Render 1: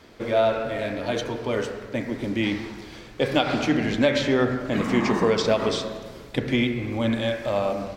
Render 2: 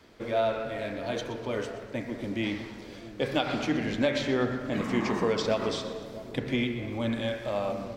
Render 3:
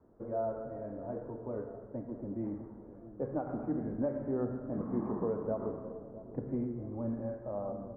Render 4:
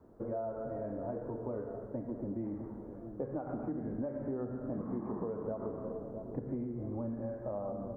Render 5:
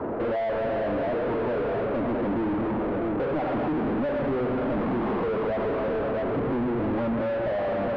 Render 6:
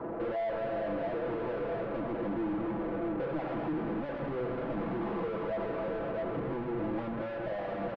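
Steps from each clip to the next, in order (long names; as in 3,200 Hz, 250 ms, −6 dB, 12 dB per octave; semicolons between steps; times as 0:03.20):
tape wow and flutter 18 cents; echo with a time of its own for lows and highs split 890 Hz, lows 659 ms, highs 123 ms, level −15 dB; level −6 dB
Bessel low-pass filter 730 Hz, order 8; level −5.5 dB
downward compressor, threshold −39 dBFS, peak gain reduction 11 dB; level +4.5 dB
mid-hump overdrive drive 42 dB, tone 1,500 Hz, clips at −25 dBFS; high-frequency loss of the air 360 metres; level +6 dB
comb filter 6 ms, depth 52%; level −8.5 dB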